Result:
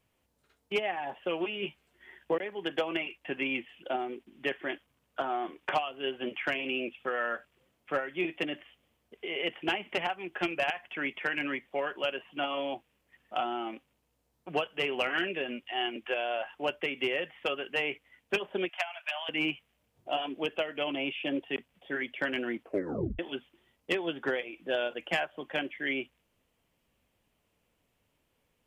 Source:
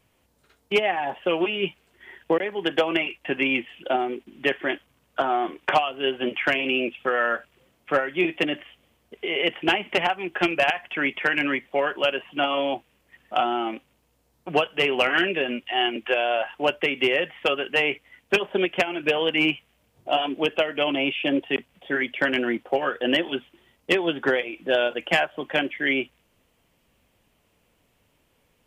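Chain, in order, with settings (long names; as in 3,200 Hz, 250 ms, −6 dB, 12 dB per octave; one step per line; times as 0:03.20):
0:01.61–0:02.35: double-tracking delay 14 ms −5.5 dB
0:18.69–0:19.29: Butterworth high-pass 620 Hz 96 dB per octave
0:22.62: tape stop 0.57 s
level −9 dB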